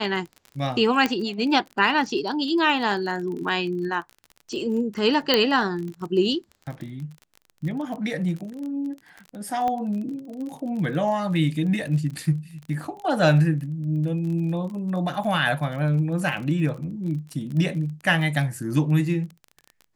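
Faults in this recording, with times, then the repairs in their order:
surface crackle 30 per second −32 dBFS
0:01.06: click −9 dBFS
0:05.34: click −5 dBFS
0:09.68: click −16 dBFS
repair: click removal

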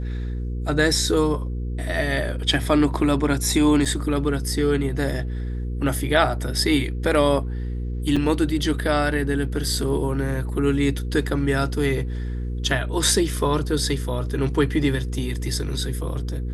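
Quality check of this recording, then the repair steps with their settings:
mains hum 60 Hz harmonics 8 −27 dBFS
0:03.85–0:03.86: drop-out 6.2 ms
0:08.16–0:08.17: drop-out 5.3 ms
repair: hum removal 60 Hz, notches 8
repair the gap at 0:03.85, 6.2 ms
repair the gap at 0:08.16, 5.3 ms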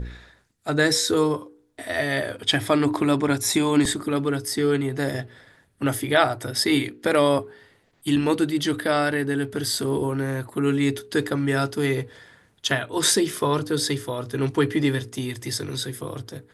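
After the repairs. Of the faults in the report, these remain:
none of them is left

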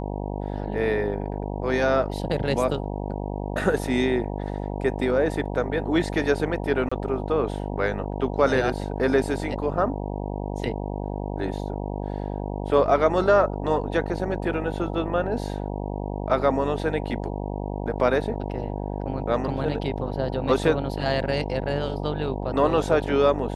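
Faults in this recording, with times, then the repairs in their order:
mains buzz 50 Hz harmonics 19 −30 dBFS
0:06.89–0:06.92: drop-out 25 ms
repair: hum removal 50 Hz, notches 19
repair the gap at 0:06.89, 25 ms

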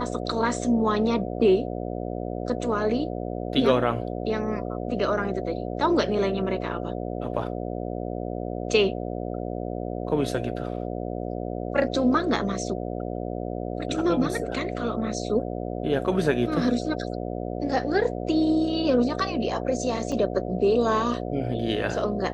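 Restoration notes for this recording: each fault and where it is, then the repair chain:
mains buzz 60 Hz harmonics 12 −31 dBFS
0:20.12: drop-out 2.6 ms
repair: hum removal 60 Hz, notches 12
repair the gap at 0:20.12, 2.6 ms

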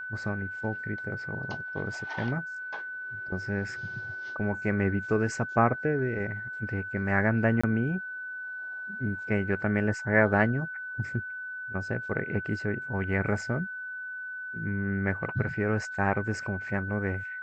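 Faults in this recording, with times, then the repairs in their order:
whistle 1,500 Hz −35 dBFS
0:07.61–0:07.63: drop-out 25 ms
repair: notch filter 1,500 Hz, Q 30
repair the gap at 0:07.61, 25 ms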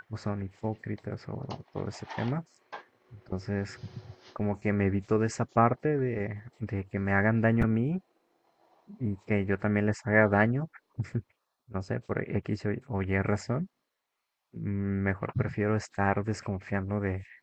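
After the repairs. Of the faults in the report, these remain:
none of them is left

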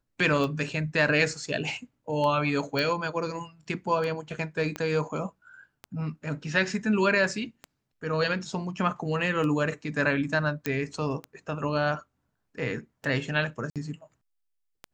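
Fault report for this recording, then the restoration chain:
scratch tick 33 1/3 rpm −21 dBFS
0:02.79: click −16 dBFS
0:04.76: click −18 dBFS
0:10.66: click −13 dBFS
0:13.70–0:13.76: drop-out 57 ms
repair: click removal
repair the gap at 0:13.70, 57 ms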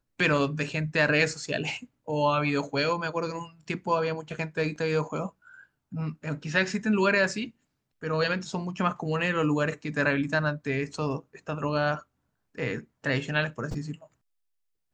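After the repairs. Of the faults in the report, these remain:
0:04.76: click

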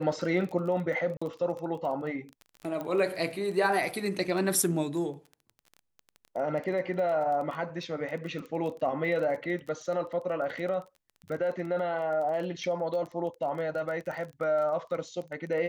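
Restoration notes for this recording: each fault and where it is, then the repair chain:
surface crackle 21 per second −36 dBFS
0:01.17–0:01.22: drop-out 45 ms
0:02.81: click −23 dBFS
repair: click removal
repair the gap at 0:01.17, 45 ms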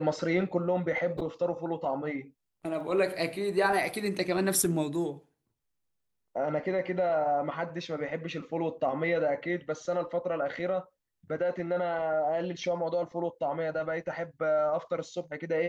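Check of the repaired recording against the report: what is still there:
0:02.81: click

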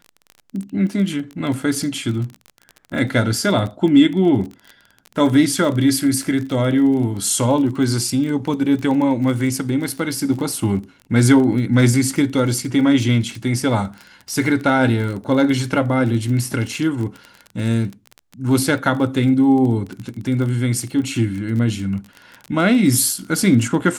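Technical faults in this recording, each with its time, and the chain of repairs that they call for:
surface crackle 24 per second −25 dBFS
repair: click removal

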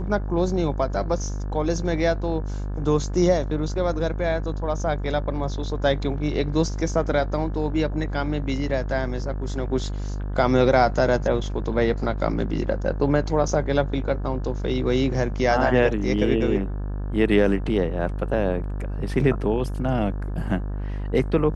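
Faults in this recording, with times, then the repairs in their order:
mains buzz 50 Hz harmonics 35 −28 dBFS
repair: hum removal 50 Hz, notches 35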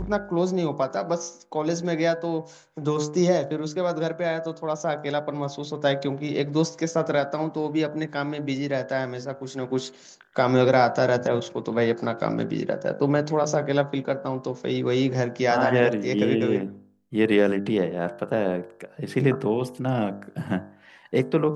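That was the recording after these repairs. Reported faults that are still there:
none of them is left

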